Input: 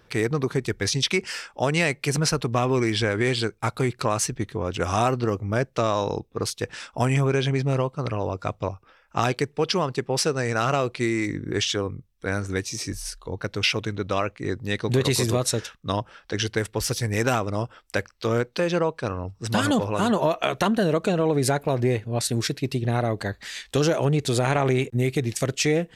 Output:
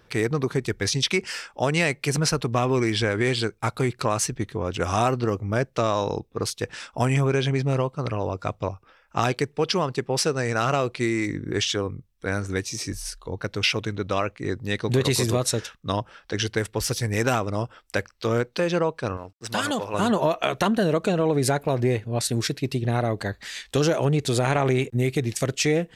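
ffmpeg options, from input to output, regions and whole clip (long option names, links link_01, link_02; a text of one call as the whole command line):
ffmpeg -i in.wav -filter_complex "[0:a]asettb=1/sr,asplit=3[link_01][link_02][link_03];[link_01]atrim=end=19.174[link_04];[link_02]atrim=start=19.17:end=19.94,asetpts=PTS-STARTPTS,afade=type=in:duration=0.004:curve=qsin,afade=type=out:start_time=0.766:duration=0.004:curve=qsin,lowshelf=frequency=300:gain=-12,aeval=exprs='sgn(val(0))*max(abs(val(0))-0.00178,0)':channel_layout=same[link_05];[link_03]atrim=start=19.936[link_06];[link_04][link_05]acrossfade=duration=0.004:curve1=hsin:curve2=qsin[link_07];[link_07][link_06]acrossfade=duration=0.004:curve1=qsin:curve2=hsin" out.wav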